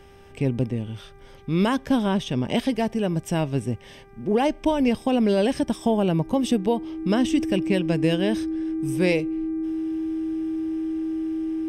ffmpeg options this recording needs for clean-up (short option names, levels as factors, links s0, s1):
-af "bandreject=f=395.7:t=h:w=4,bandreject=f=791.4:t=h:w=4,bandreject=f=1187.1:t=h:w=4,bandreject=f=1582.8:t=h:w=4,bandreject=f=1978.5:t=h:w=4,bandreject=f=2374.2:t=h:w=4,bandreject=f=320:w=30"